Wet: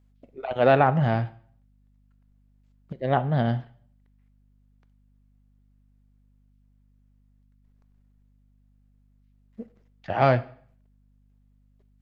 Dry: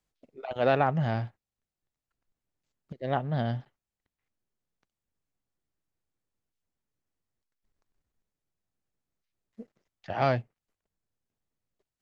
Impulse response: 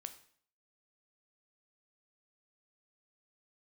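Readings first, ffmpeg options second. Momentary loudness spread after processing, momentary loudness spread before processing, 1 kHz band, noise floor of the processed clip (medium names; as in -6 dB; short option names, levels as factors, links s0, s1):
14 LU, 14 LU, +6.0 dB, -62 dBFS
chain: -filter_complex "[0:a]asplit=2[s0][s1];[1:a]atrim=start_sample=2205,lowpass=3900[s2];[s1][s2]afir=irnorm=-1:irlink=0,volume=1.58[s3];[s0][s3]amix=inputs=2:normalize=0,aeval=exprs='val(0)+0.001*(sin(2*PI*50*n/s)+sin(2*PI*2*50*n/s)/2+sin(2*PI*3*50*n/s)/3+sin(2*PI*4*50*n/s)/4+sin(2*PI*5*50*n/s)/5)':c=same"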